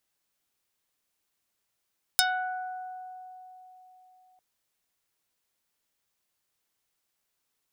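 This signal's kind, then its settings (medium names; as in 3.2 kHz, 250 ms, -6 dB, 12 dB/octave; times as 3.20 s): plucked string F#5, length 2.20 s, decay 3.95 s, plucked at 0.36, dark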